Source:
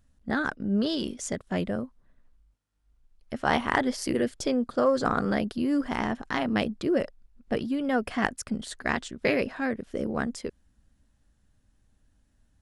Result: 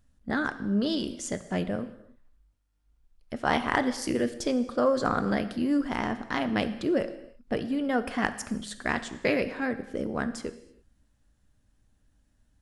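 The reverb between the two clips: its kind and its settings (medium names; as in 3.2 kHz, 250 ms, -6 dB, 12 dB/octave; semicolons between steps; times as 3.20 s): gated-style reverb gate 350 ms falling, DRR 10.5 dB; trim -1 dB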